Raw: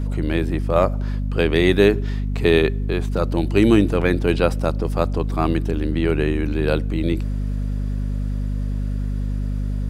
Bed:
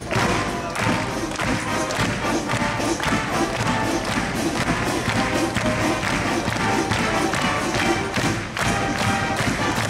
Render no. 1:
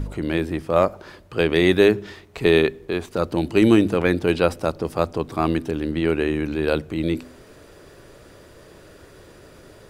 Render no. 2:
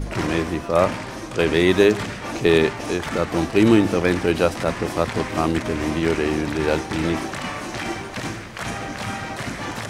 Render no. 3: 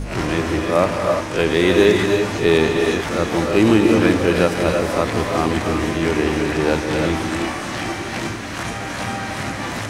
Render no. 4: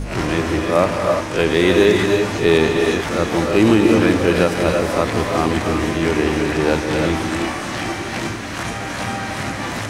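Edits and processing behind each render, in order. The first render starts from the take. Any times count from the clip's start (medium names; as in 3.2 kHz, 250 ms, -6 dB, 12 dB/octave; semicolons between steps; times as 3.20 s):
de-hum 50 Hz, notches 5
add bed -7.5 dB
reverse spectral sustain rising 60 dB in 0.31 s; gated-style reverb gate 370 ms rising, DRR 2 dB
trim +1 dB; peak limiter -2 dBFS, peak gain reduction 2 dB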